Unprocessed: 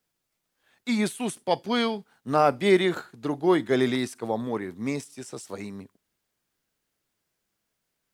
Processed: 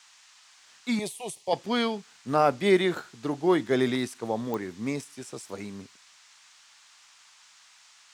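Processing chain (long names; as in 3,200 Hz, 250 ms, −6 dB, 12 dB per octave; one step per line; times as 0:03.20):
noise in a band 870–7,500 Hz −55 dBFS
0:00.99–0:01.53: phaser with its sweep stopped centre 610 Hz, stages 4
digital clicks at 0:04.54, −17 dBFS
level −1.5 dB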